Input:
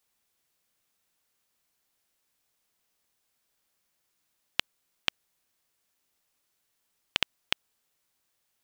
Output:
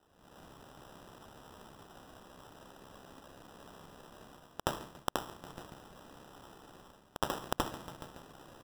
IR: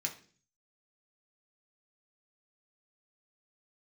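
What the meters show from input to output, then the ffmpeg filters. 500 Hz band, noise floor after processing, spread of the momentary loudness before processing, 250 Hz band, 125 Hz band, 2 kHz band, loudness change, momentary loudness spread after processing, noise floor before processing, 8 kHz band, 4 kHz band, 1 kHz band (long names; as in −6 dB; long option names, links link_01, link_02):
+9.5 dB, −64 dBFS, 3 LU, +10.0 dB, +9.5 dB, −8.5 dB, −10.5 dB, 17 LU, −77 dBFS, +1.0 dB, −11.5 dB, +8.0 dB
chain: -filter_complex "[0:a]highshelf=frequency=4600:width_type=q:width=1.5:gain=-12,asplit=2[link_01][link_02];[1:a]atrim=start_sample=2205,adelay=74[link_03];[link_02][link_03]afir=irnorm=-1:irlink=0,volume=-1.5dB[link_04];[link_01][link_04]amix=inputs=2:normalize=0,tremolo=f=67:d=0.519,asplit=2[link_05][link_06];[link_06]adelay=141,lowpass=frequency=2900:poles=1,volume=-22.5dB,asplit=2[link_07][link_08];[link_08]adelay=141,lowpass=frequency=2900:poles=1,volume=0.53,asplit=2[link_09][link_10];[link_10]adelay=141,lowpass=frequency=2900:poles=1,volume=0.53,asplit=2[link_11][link_12];[link_12]adelay=141,lowpass=frequency=2900:poles=1,volume=0.53[link_13];[link_05][link_07][link_09][link_11][link_13]amix=inputs=5:normalize=0,dynaudnorm=framelen=180:gausssize=3:maxgain=15dB,equalizer=frequency=2300:width_type=o:width=1.5:gain=-8,acompressor=threshold=-47dB:ratio=4,acrusher=samples=20:mix=1:aa=0.000001,volume=16dB"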